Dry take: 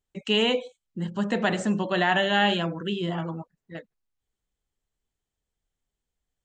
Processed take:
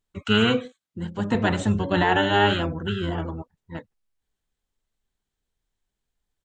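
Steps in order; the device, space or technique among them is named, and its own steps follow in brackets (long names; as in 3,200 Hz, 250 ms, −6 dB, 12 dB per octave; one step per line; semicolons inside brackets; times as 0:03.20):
octave pedal (pitch-shifted copies added −12 semitones −1 dB)
0:00.65–0:01.35: Chebyshev high-pass filter 160 Hz, order 2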